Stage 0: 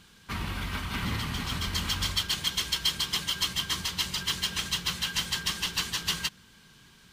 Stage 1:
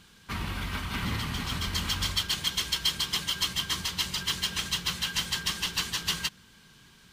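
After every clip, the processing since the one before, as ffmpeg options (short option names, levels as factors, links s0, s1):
-af anull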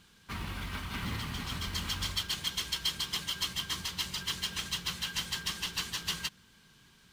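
-af "acrusher=bits=6:mode=log:mix=0:aa=0.000001,volume=0.562"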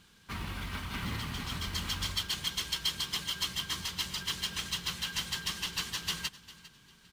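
-af "aecho=1:1:401|802:0.126|0.034"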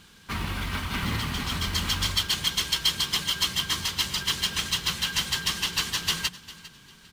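-af "bandreject=f=60:t=h:w=6,bandreject=f=120:t=h:w=6,bandreject=f=180:t=h:w=6,volume=2.51"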